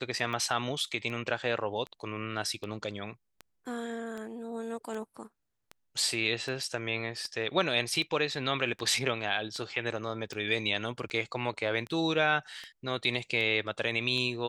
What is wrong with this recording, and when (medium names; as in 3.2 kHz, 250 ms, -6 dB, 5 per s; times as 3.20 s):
tick 78 rpm -26 dBFS